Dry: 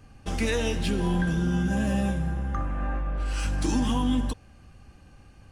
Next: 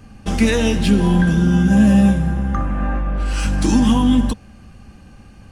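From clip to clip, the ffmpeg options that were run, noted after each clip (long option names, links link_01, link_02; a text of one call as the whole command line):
ffmpeg -i in.wav -af "equalizer=frequency=210:width=4.1:gain=9,volume=8dB" out.wav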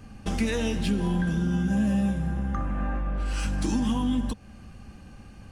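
ffmpeg -i in.wav -af "acompressor=threshold=-25dB:ratio=2,volume=-3.5dB" out.wav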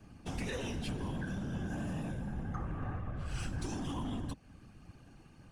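ffmpeg -i in.wav -filter_complex "[0:a]afftfilt=real='hypot(re,im)*cos(2*PI*random(0))':imag='hypot(re,im)*sin(2*PI*random(1))':win_size=512:overlap=0.75,acrossover=split=110|670|3600[link_01][link_02][link_03][link_04];[link_02]asoftclip=type=hard:threshold=-35dB[link_05];[link_01][link_05][link_03][link_04]amix=inputs=4:normalize=0,volume=-3.5dB" out.wav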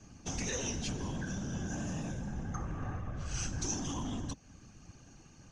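ffmpeg -i in.wav -af "lowpass=frequency=6300:width_type=q:width=8.9" out.wav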